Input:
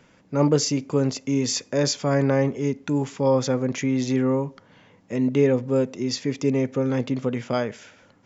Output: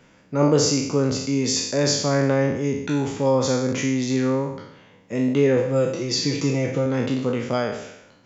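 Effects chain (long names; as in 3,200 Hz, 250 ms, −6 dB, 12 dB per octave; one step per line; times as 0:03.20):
peak hold with a decay on every bin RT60 0.79 s
0:05.56–0:06.86: comb filter 6.1 ms, depth 71%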